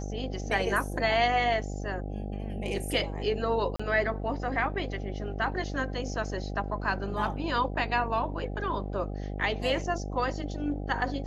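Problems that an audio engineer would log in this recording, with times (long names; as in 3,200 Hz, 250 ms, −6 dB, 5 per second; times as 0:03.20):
mains buzz 50 Hz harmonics 16 −35 dBFS
0:03.76–0:03.79: drop-out 35 ms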